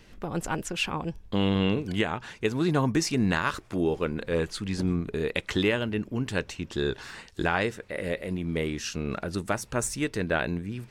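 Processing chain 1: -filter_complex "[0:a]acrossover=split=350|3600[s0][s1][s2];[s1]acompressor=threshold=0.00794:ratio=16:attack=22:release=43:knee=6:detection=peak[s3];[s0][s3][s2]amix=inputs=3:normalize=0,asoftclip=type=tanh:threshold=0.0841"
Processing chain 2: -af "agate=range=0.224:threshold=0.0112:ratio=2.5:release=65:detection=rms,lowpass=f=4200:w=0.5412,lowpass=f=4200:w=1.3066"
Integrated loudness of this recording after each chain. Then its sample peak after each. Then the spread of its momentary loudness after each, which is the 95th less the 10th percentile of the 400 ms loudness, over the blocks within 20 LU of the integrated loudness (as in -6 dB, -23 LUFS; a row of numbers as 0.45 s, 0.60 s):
-33.0 LUFS, -29.0 LUFS; -21.5 dBFS, -9.5 dBFS; 7 LU, 7 LU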